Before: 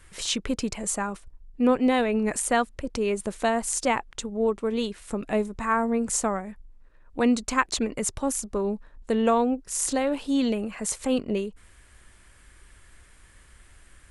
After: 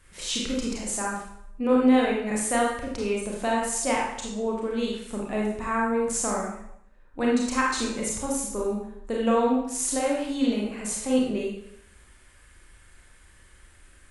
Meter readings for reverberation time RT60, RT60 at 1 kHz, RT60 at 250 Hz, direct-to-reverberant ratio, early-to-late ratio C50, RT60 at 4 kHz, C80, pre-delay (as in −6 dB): 0.75 s, 0.75 s, 0.65 s, −3.5 dB, 1.0 dB, 0.65 s, 4.5 dB, 28 ms